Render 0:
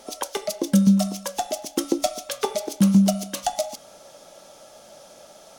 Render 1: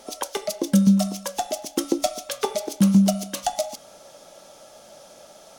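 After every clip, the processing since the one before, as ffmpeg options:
-af anull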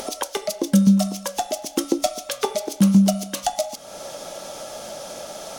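-af "acompressor=mode=upward:threshold=-25dB:ratio=2.5,volume=1.5dB"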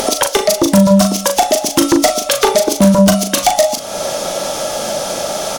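-filter_complex "[0:a]asplit=2[a][b];[b]aeval=exprs='0.596*sin(PI/2*3.98*val(0)/0.596)':c=same,volume=-7dB[c];[a][c]amix=inputs=2:normalize=0,asplit=2[d][e];[e]adelay=39,volume=-7dB[f];[d][f]amix=inputs=2:normalize=0,volume=3dB"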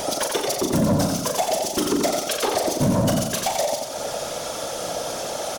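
-filter_complex "[0:a]afftfilt=real='hypot(re,im)*cos(2*PI*random(0))':imag='hypot(re,im)*sin(2*PI*random(1))':win_size=512:overlap=0.75,asplit=2[a][b];[b]aecho=0:1:89|178|267|356|445:0.562|0.247|0.109|0.0479|0.0211[c];[a][c]amix=inputs=2:normalize=0,asoftclip=type=tanh:threshold=-8dB,volume=-4dB"

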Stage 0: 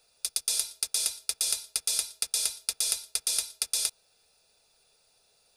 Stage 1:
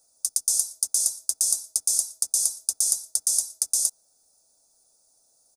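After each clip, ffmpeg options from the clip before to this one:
-af "firequalizer=gain_entry='entry(170,0);entry(290,10);entry(420,-4);entry(590,5);entry(2600,-19);entry(6200,14);entry(12000,9)':delay=0.05:min_phase=1,volume=-5dB"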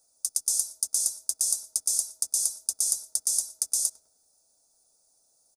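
-filter_complex "[0:a]asplit=2[a][b];[b]adelay=102,lowpass=f=1.3k:p=1,volume=-14dB,asplit=2[c][d];[d]adelay=102,lowpass=f=1.3k:p=1,volume=0.51,asplit=2[e][f];[f]adelay=102,lowpass=f=1.3k:p=1,volume=0.51,asplit=2[g][h];[h]adelay=102,lowpass=f=1.3k:p=1,volume=0.51,asplit=2[i][j];[j]adelay=102,lowpass=f=1.3k:p=1,volume=0.51[k];[a][c][e][g][i][k]amix=inputs=6:normalize=0,volume=-3dB"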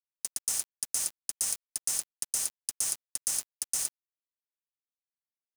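-af "highpass=140,alimiter=limit=-15dB:level=0:latency=1:release=297,aeval=exprs='val(0)*gte(abs(val(0)),0.0299)':c=same"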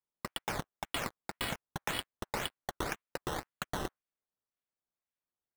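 -filter_complex "[0:a]acrossover=split=880|1800[a][b][c];[b]flanger=delay=6.2:depth=8.9:regen=-61:speed=1.9:shape=triangular[d];[c]acrusher=samples=13:mix=1:aa=0.000001:lfo=1:lforange=13:lforate=1.9[e];[a][d][e]amix=inputs=3:normalize=0,volume=-5.5dB"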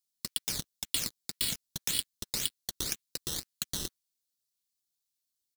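-af "firequalizer=gain_entry='entry(220,0);entry(750,-14);entry(4100,14)':delay=0.05:min_phase=1,volume=-2dB"

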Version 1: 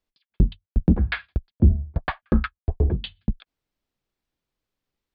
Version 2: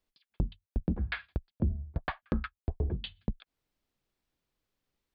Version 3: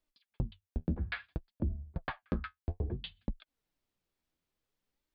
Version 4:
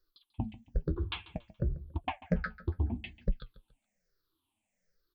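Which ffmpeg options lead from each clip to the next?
-af "acompressor=threshold=-33dB:ratio=2.5"
-af "flanger=delay=3.2:depth=9.4:regen=48:speed=0.59:shape=sinusoidal,volume=1dB"
-af "afftfilt=real='re*pow(10,24/40*sin(2*PI*(0.58*log(max(b,1)*sr/1024/100)/log(2)-(-1.2)*(pts-256)/sr)))':imag='im*pow(10,24/40*sin(2*PI*(0.58*log(max(b,1)*sr/1024/100)/log(2)-(-1.2)*(pts-256)/sr)))':win_size=1024:overlap=0.75,aecho=1:1:141|282|423:0.126|0.0415|0.0137,flanger=delay=2.7:depth=6.7:regen=63:speed=0.97:shape=sinusoidal,volume=2.5dB"

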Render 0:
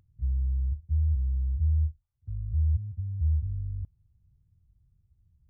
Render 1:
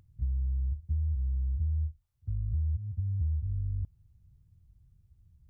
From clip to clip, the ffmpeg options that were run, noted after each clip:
-af "acompressor=threshold=-32dB:ratio=6,volume=4dB"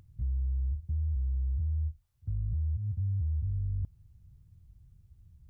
-af "alimiter=level_in=6.5dB:limit=-24dB:level=0:latency=1:release=12,volume=-6.5dB,volume=4dB"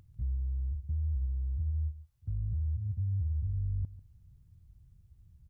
-af "aecho=1:1:144:0.168,volume=-1.5dB"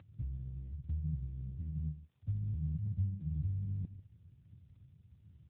-af "volume=4dB" -ar 8000 -c:a libopencore_amrnb -b:a 7950

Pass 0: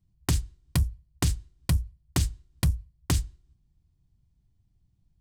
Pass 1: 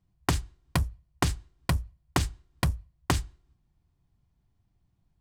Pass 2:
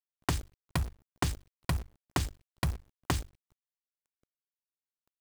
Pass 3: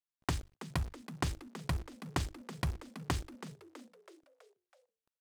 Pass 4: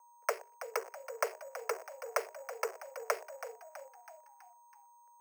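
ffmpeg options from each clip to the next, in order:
-af "equalizer=f=960:w=0.34:g=13,volume=-4.5dB"
-af "acrusher=bits=7:dc=4:mix=0:aa=0.000001,volume=-4.5dB"
-filter_complex "[0:a]highshelf=f=12k:g=-10.5,asplit=2[a][b];[b]asplit=5[c][d][e][f][g];[c]adelay=326,afreqshift=89,volume=-13dB[h];[d]adelay=652,afreqshift=178,volume=-18.5dB[i];[e]adelay=978,afreqshift=267,volume=-24dB[j];[f]adelay=1304,afreqshift=356,volume=-29.5dB[k];[g]adelay=1630,afreqshift=445,volume=-35.1dB[l];[h][i][j][k][l]amix=inputs=5:normalize=0[m];[a][m]amix=inputs=2:normalize=0,volume=-3.5dB"
-af "aeval=exprs='val(0)+0.000794*sin(2*PI*650*n/s)':c=same,highpass=f=160:t=q:w=0.5412,highpass=f=160:t=q:w=1.307,lowpass=f=2.2k:t=q:w=0.5176,lowpass=f=2.2k:t=q:w=0.7071,lowpass=f=2.2k:t=q:w=1.932,afreqshift=300,acrusher=samples=6:mix=1:aa=0.000001,volume=3.5dB"

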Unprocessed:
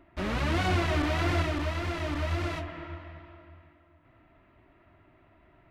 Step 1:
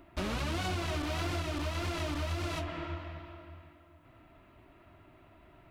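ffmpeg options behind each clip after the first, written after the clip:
-af "equalizer=f=1.9k:w=3.3:g=-5,acompressor=threshold=-33dB:ratio=10,highshelf=f=4k:g=9,volume=2dB"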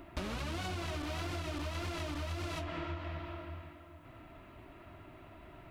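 -af "acompressor=threshold=-41dB:ratio=6,volume=5dB"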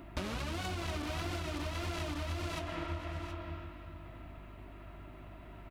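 -filter_complex "[0:a]aeval=exprs='val(0)+0.00282*(sin(2*PI*50*n/s)+sin(2*PI*2*50*n/s)/2+sin(2*PI*3*50*n/s)/3+sin(2*PI*4*50*n/s)/4+sin(2*PI*5*50*n/s)/5)':c=same,asplit=2[a][b];[b]acrusher=bits=4:mix=0:aa=0.5,volume=-10.5dB[c];[a][c]amix=inputs=2:normalize=0,aecho=1:1:723:0.266"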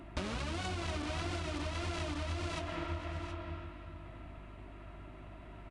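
-af "aresample=22050,aresample=44100"

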